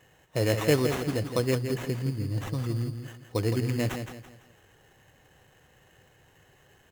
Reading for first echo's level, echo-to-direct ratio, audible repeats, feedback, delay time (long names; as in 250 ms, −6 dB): −8.0 dB, −7.5 dB, 4, 36%, 167 ms